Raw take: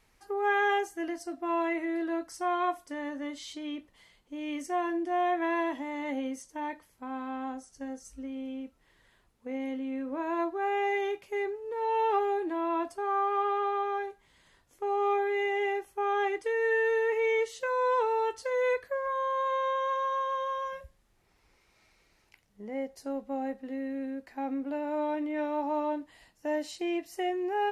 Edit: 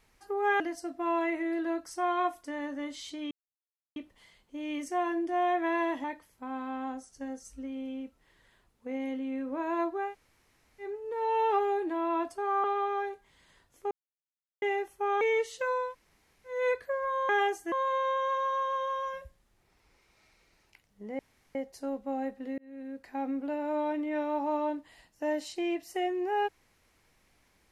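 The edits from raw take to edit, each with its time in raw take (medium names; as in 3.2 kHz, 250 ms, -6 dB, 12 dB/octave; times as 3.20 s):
0.60–1.03 s: move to 19.31 s
3.74 s: insert silence 0.65 s
5.82–6.64 s: delete
10.67–11.46 s: room tone, crossfade 0.16 s
13.24–13.61 s: delete
14.88–15.59 s: mute
16.18–17.23 s: delete
17.85–18.58 s: room tone, crossfade 0.24 s
22.78 s: insert room tone 0.36 s
23.81–24.31 s: fade in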